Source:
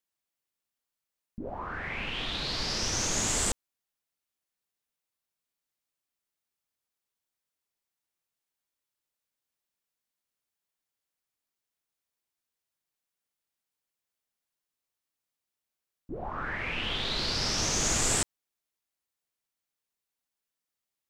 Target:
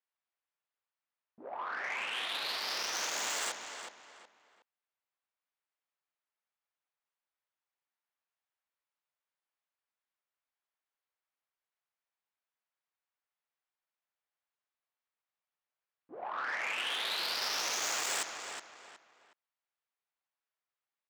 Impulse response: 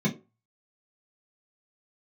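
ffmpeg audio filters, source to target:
-filter_complex "[0:a]adynamicsmooth=sensitivity=4:basefreq=2.5k,asplit=2[a][b];[b]adelay=367,lowpass=f=4k:p=1,volume=-10dB,asplit=2[c][d];[d]adelay=367,lowpass=f=4k:p=1,volume=0.31,asplit=2[e][f];[f]adelay=367,lowpass=f=4k:p=1,volume=0.31[g];[c][e][g]amix=inputs=3:normalize=0[h];[a][h]amix=inputs=2:normalize=0,asoftclip=type=tanh:threshold=-29.5dB,highpass=730,volume=2.5dB"

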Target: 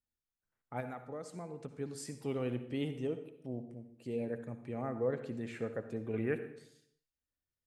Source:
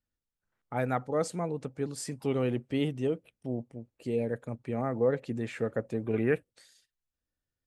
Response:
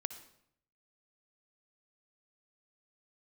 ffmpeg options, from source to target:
-filter_complex "[0:a]asettb=1/sr,asplit=3[a][b][c];[a]atrim=end=0.804[d];[b]atrim=start=0.8:end=1.63,asetpts=PTS-STARTPTS,afade=t=in:d=0.004:c=qsin,afade=t=out:st=0.826:d=0.004:c=qsin,acompressor=threshold=-33dB:ratio=6[e];[c]atrim=start=1.626[f];[d][e]acrossfade=d=0.004:c1=hsin:c2=qsin[g];[g][f]acrossfade=d=0.004:c1=qsin:c2=hsin[h];[1:a]atrim=start_sample=2205[i];[h][i]afir=irnorm=-1:irlink=0,volume=-6dB"

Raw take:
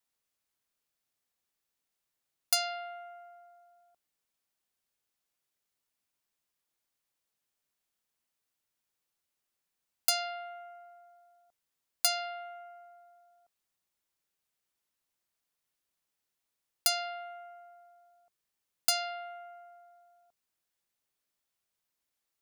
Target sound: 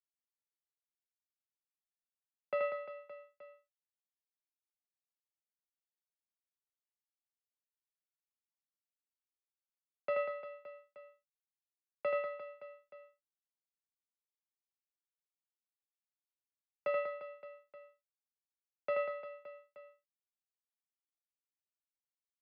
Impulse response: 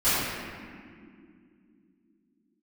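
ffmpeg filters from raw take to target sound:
-af "acrusher=bits=4:mix=0:aa=0.5,tiltshelf=f=870:g=9.5,highpass=f=280:t=q:w=0.5412,highpass=f=280:t=q:w=1.307,lowpass=f=2.7k:t=q:w=0.5176,lowpass=f=2.7k:t=q:w=0.7071,lowpass=f=2.7k:t=q:w=1.932,afreqshift=-120,aemphasis=mode=reproduction:type=50fm,aecho=1:1:80|192|348.8|568.3|875.6:0.631|0.398|0.251|0.158|0.1,volume=1dB"

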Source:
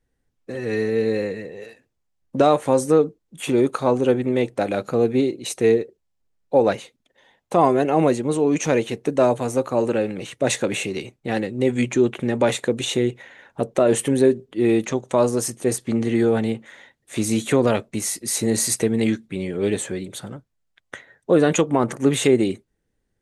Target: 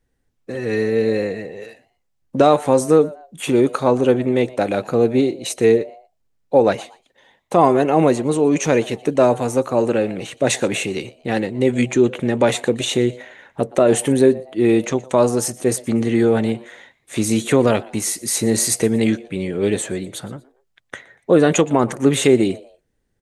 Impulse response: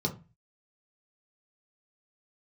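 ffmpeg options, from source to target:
-filter_complex "[0:a]asplit=3[a][b][c];[b]adelay=119,afreqshift=130,volume=-22dB[d];[c]adelay=238,afreqshift=260,volume=-31.4dB[e];[a][d][e]amix=inputs=3:normalize=0,volume=3dB"

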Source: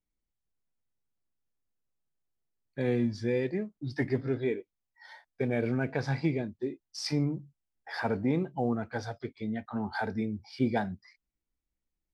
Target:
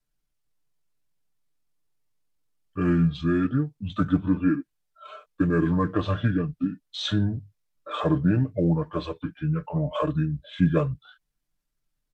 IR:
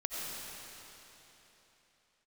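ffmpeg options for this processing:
-af "adynamicequalizer=threshold=0.00501:dfrequency=220:dqfactor=7:tfrequency=220:tqfactor=7:attack=5:release=100:ratio=0.375:range=2:mode=cutabove:tftype=bell,asetrate=31183,aresample=44100,atempo=1.41421,aecho=1:1:6.7:0.56,volume=6dB"

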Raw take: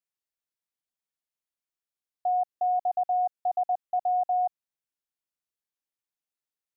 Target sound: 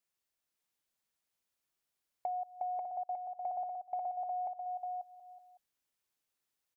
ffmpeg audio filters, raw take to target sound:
-filter_complex "[0:a]asplit=2[a][b];[b]aecho=0:1:186|372|558:0.075|0.0322|0.0139[c];[a][c]amix=inputs=2:normalize=0,acompressor=threshold=-42dB:ratio=6,asplit=2[d][e];[e]aecho=0:1:540:0.668[f];[d][f]amix=inputs=2:normalize=0,volume=4.5dB"

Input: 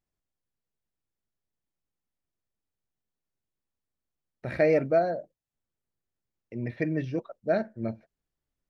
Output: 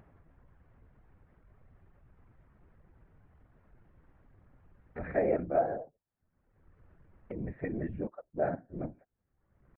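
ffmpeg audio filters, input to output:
-af "lowpass=f=1.8k:w=0.5412,lowpass=f=1.8k:w=1.3066,acompressor=mode=upward:threshold=-27dB:ratio=2.5,afftfilt=real='hypot(re,im)*cos(2*PI*random(0))':imag='hypot(re,im)*sin(2*PI*random(1))':win_size=512:overlap=0.75,atempo=0.89"

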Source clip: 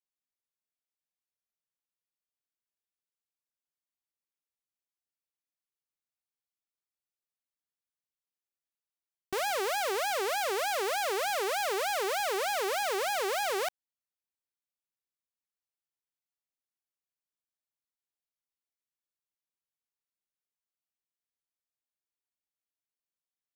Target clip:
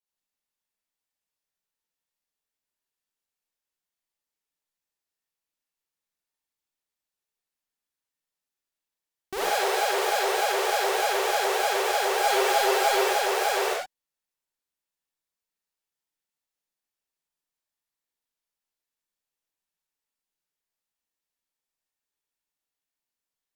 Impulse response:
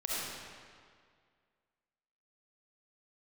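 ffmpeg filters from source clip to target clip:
-filter_complex "[0:a]asettb=1/sr,asplit=3[a][b][c];[a]atrim=end=12.174[d];[b]atrim=start=12.17:end=13.04,asetpts=PTS-STARTPTS,afade=t=in:d=0.004:c=qsin,afade=t=out:st=0.866:d=0.004:c=qsin,aecho=1:1:7.5:0.79,atrim=end_sample=38367[e];[c]atrim=start=13.036[f];[d][e]acrossfade=d=0.004:c1=hsin:c2=qsin[g];[g][f]acrossfade=d=0.004:c1=qsin:c2=hsin[h];[1:a]atrim=start_sample=2205,afade=t=out:st=0.29:d=0.01,atrim=end_sample=13230,asetrate=61740,aresample=44100[i];[h][i]afir=irnorm=-1:irlink=0,volume=4dB"

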